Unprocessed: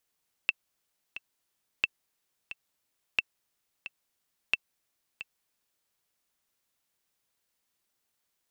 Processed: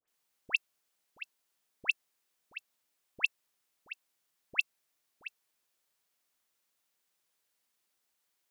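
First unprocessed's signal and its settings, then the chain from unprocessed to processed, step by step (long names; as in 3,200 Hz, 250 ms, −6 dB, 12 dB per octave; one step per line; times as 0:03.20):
click track 89 BPM, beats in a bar 2, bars 4, 2,670 Hz, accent 14.5 dB −10.5 dBFS
low-shelf EQ 180 Hz −9.5 dB
all-pass dispersion highs, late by 80 ms, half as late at 1,700 Hz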